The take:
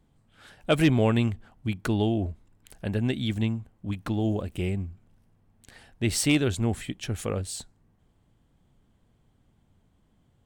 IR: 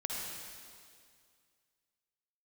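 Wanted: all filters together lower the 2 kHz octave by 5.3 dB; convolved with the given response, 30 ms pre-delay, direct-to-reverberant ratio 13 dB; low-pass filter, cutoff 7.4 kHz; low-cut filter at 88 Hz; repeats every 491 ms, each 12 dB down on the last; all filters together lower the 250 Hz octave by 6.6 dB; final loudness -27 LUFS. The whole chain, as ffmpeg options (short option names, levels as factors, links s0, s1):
-filter_complex "[0:a]highpass=88,lowpass=7400,equalizer=f=250:t=o:g=-8.5,equalizer=f=2000:t=o:g=-7,aecho=1:1:491|982|1473:0.251|0.0628|0.0157,asplit=2[s0][s1];[1:a]atrim=start_sample=2205,adelay=30[s2];[s1][s2]afir=irnorm=-1:irlink=0,volume=0.158[s3];[s0][s3]amix=inputs=2:normalize=0,volume=1.68"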